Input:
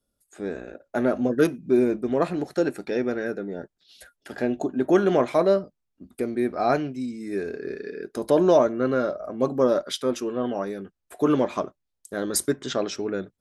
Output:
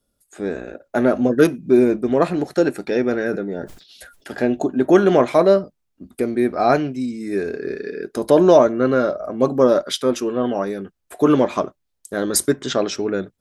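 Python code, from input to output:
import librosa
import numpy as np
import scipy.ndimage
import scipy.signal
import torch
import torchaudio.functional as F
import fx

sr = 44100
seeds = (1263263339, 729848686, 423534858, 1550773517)

y = fx.sustainer(x, sr, db_per_s=99.0, at=(3.11, 4.31))
y = F.gain(torch.from_numpy(y), 6.0).numpy()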